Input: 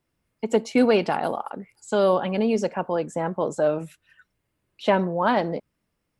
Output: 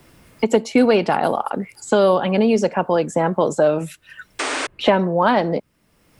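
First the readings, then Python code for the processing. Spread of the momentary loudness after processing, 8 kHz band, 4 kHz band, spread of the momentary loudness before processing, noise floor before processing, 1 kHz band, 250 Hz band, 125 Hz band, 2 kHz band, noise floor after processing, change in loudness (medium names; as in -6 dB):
10 LU, +10.0 dB, +7.5 dB, 13 LU, -77 dBFS, +5.5 dB, +5.5 dB, +6.0 dB, +6.5 dB, -61 dBFS, +5.0 dB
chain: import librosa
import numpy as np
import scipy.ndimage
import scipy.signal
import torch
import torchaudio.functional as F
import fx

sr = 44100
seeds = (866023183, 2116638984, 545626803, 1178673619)

y = fx.spec_paint(x, sr, seeds[0], shape='noise', start_s=4.39, length_s=0.28, low_hz=250.0, high_hz=9500.0, level_db=-35.0)
y = fx.band_squash(y, sr, depth_pct=70)
y = y * 10.0 ** (5.5 / 20.0)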